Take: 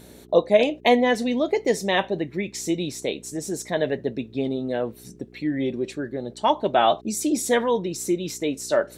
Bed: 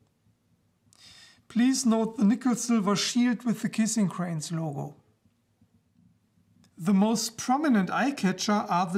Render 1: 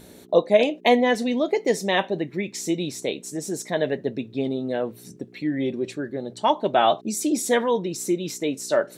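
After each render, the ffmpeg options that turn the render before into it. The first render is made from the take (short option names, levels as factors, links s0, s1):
-af "bandreject=f=60:t=h:w=4,bandreject=f=120:t=h:w=4"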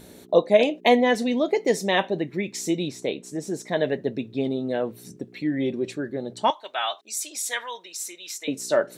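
-filter_complex "[0:a]asettb=1/sr,asplit=3[s0][s1][s2];[s0]atrim=end=2.884[s3];[s1]atrim=start=2.88:end=3.71,asetpts=PTS-STARTPTS,afade=t=in:d=0.004:c=qsin,afade=t=out:st=0.826:d=0.004:c=qsin,highshelf=f=5300:g=-10[s4];[s2]atrim=start=3.706[s5];[s3][s4]acrossfade=d=0.004:c1=hsin:c2=qsin[s6];[s6][s5]acrossfade=d=0.004:c1=qsin:c2=hsin,asettb=1/sr,asplit=3[s7][s8][s9];[s7]atrim=end=6.504[s10];[s8]atrim=start=6.5:end=8.48,asetpts=PTS-STARTPTS,afade=t=in:d=0.004:c=qsin,afade=t=out:st=1.976:d=0.004:c=qsin,highpass=1400[s11];[s9]atrim=start=8.476[s12];[s10][s11]acrossfade=d=0.004:c1=hsin:c2=qsin[s13];[s13][s12]acrossfade=d=0.004:c1=qsin:c2=hsin"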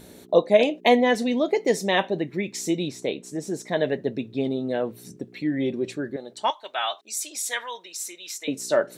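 -filter_complex "[0:a]asettb=1/sr,asplit=3[s0][s1][s2];[s0]atrim=end=6.164[s3];[s1]atrim=start=6.16:end=6.63,asetpts=PTS-STARTPTS,afade=t=in:d=0.004:c=qsin,afade=t=out:st=0.466:d=0.004:c=qsin,highpass=f=760:p=1[s4];[s2]atrim=start=6.626[s5];[s3][s4]acrossfade=d=0.004:c1=hsin:c2=qsin[s6];[s6][s5]acrossfade=d=0.004:c1=qsin:c2=hsin"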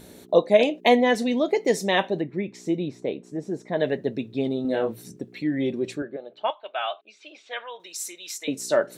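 -filter_complex "[0:a]asettb=1/sr,asplit=3[s0][s1][s2];[s0]atrim=end=2.214[s3];[s1]atrim=start=2.21:end=3.8,asetpts=PTS-STARTPTS,afade=t=in:d=0.004:c=qsin,afade=t=out:st=1.586:d=0.004:c=qsin,lowpass=f=1200:p=1[s4];[s2]atrim=start=3.796[s5];[s3][s4]acrossfade=d=0.004:c1=hsin:c2=qsin[s6];[s6][s5]acrossfade=d=0.004:c1=qsin:c2=hsin,asettb=1/sr,asplit=3[s7][s8][s9];[s7]atrim=end=4.624[s10];[s8]atrim=start=4.62:end=5.02,asetpts=PTS-STARTPTS,afade=t=in:d=0.004:c=qsin,afade=t=out:st=0.396:d=0.004:c=qsin,asplit=2[s11][s12];[s12]adelay=27,volume=0.708[s13];[s11][s13]amix=inputs=2:normalize=0,atrim=end_sample=17640[s14];[s9]atrim=start=5.016[s15];[s10][s14]acrossfade=d=0.004:c1=hsin:c2=qsin[s16];[s16][s15]acrossfade=d=0.004:c1=qsin:c2=hsin,asettb=1/sr,asplit=3[s17][s18][s19];[s17]atrim=end=6.024[s20];[s18]atrim=start=6.02:end=7.8,asetpts=PTS-STARTPTS,afade=t=in:d=0.004:c=qsin,afade=t=out:st=1.776:d=0.004:c=qsin,highpass=220,equalizer=f=250:t=q:w=4:g=-7,equalizer=f=370:t=q:w=4:g=-3,equalizer=f=630:t=q:w=4:g=4,equalizer=f=930:t=q:w=4:g=-6,equalizer=f=1900:t=q:w=4:g=-9,equalizer=f=2700:t=q:w=4:g=3,lowpass=f=2900:w=0.5412,lowpass=f=2900:w=1.3066[s21];[s19]atrim=start=7.796[s22];[s20][s21]acrossfade=d=0.004:c1=hsin:c2=qsin[s23];[s23][s22]acrossfade=d=0.004:c1=qsin:c2=hsin"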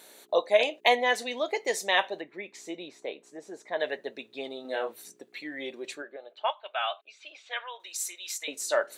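-af "highpass=740,bandreject=f=5400:w=14"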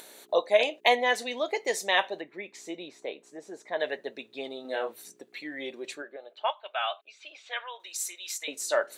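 -af "acompressor=mode=upward:threshold=0.00562:ratio=2.5"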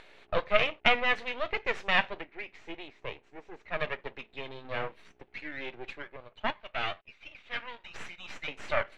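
-af "aeval=exprs='max(val(0),0)':c=same,lowpass=f=2500:t=q:w=2"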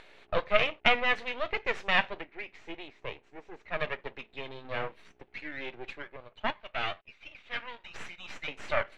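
-af anull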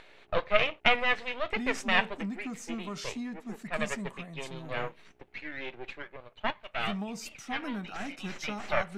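-filter_complex "[1:a]volume=0.211[s0];[0:a][s0]amix=inputs=2:normalize=0"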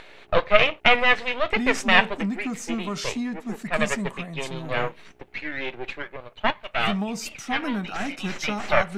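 -af "volume=2.66,alimiter=limit=0.891:level=0:latency=1"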